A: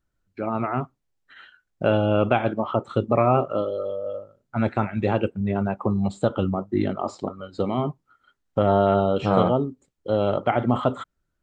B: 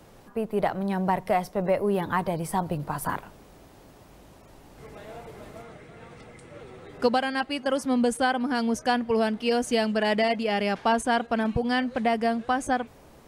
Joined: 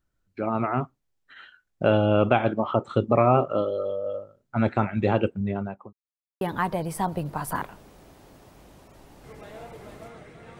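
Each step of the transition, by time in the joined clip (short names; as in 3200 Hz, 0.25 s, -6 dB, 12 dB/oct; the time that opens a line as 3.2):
A
5.29–5.93 fade out linear
5.93–6.41 mute
6.41 switch to B from 1.95 s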